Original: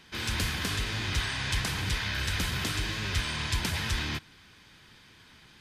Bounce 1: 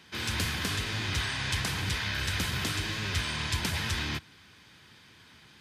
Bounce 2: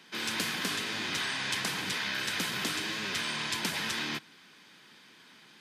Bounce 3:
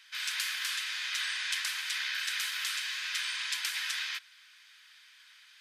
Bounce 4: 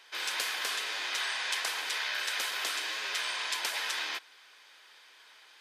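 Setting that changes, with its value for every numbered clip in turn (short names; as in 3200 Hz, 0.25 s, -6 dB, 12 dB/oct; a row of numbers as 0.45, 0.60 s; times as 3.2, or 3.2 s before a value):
HPF, cutoff: 63, 180, 1400, 500 Hz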